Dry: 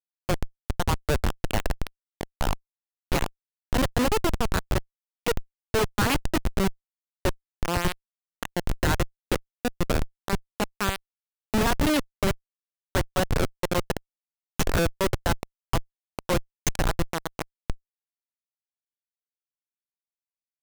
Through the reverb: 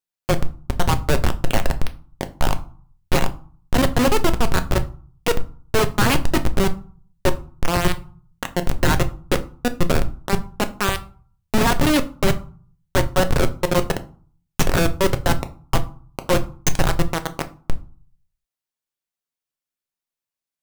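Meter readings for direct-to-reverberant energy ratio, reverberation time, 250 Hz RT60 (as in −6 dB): 8.0 dB, 0.45 s, 0.55 s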